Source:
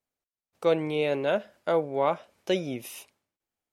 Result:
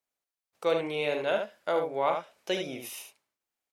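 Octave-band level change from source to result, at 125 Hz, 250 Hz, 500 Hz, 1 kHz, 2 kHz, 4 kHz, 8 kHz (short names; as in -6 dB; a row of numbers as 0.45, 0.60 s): -8.0 dB, -6.0 dB, -2.5 dB, -0.5 dB, +0.5 dB, +1.0 dB, n/a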